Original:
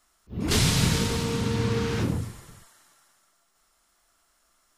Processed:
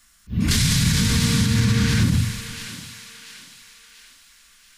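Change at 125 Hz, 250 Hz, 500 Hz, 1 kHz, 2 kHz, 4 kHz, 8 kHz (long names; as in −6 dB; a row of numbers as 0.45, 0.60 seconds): +7.5, +6.5, −6.0, −1.0, +6.5, +6.0, +6.5 decibels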